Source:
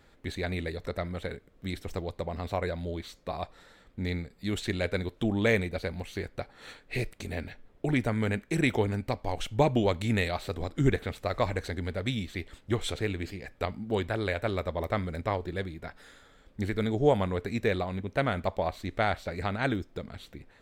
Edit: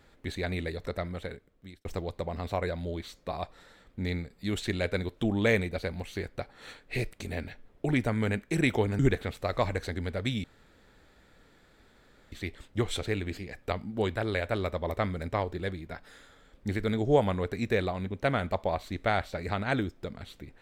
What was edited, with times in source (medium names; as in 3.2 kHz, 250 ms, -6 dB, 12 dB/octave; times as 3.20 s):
0.77–1.85 s: fade out equal-power
8.99–10.80 s: delete
12.25 s: insert room tone 1.88 s